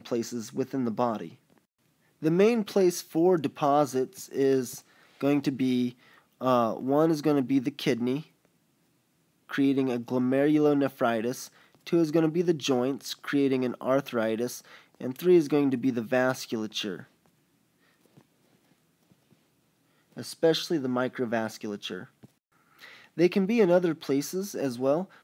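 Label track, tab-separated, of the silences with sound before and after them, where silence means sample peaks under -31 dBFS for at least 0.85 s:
1.260000	2.230000	silence
8.200000	9.510000	silence
17.000000	20.180000	silence
22.020000	23.180000	silence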